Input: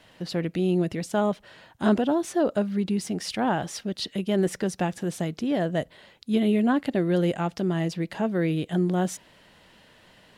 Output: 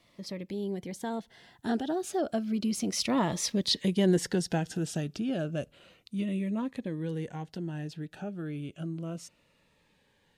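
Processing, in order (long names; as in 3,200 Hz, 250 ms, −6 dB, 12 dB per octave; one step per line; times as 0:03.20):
source passing by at 0:03.66, 32 m/s, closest 22 metres
dynamic equaliser 5,200 Hz, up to +4 dB, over −52 dBFS, Q 0.85
in parallel at +2 dB: downward compressor, threshold −42 dBFS, peak gain reduction 20 dB
on the sum: phaser whose notches keep moving one way falling 0.32 Hz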